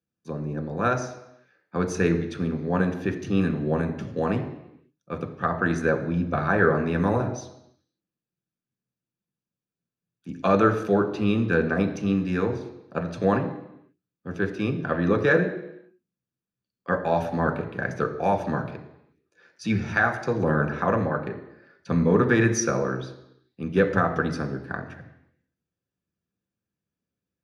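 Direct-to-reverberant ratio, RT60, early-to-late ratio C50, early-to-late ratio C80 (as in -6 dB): 3.5 dB, 0.85 s, 10.0 dB, 12.0 dB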